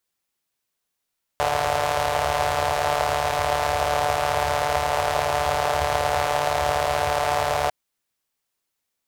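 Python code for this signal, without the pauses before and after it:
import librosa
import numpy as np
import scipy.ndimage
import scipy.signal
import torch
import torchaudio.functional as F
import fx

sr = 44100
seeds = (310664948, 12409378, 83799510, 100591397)

y = fx.engine_four(sr, seeds[0], length_s=6.3, rpm=4400, resonances_hz=(82.0, 670.0))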